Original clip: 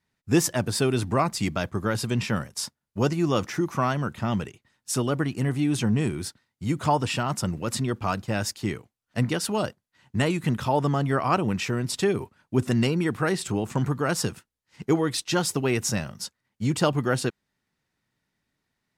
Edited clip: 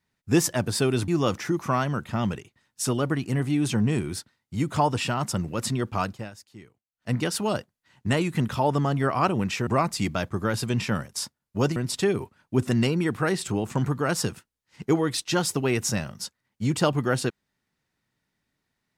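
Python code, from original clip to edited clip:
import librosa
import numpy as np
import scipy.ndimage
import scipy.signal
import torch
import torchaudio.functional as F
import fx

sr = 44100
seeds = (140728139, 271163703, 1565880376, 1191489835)

y = fx.edit(x, sr, fx.move(start_s=1.08, length_s=2.09, to_s=11.76),
    fx.fade_down_up(start_s=8.12, length_s=1.16, db=-18.0, fade_s=0.28), tone=tone)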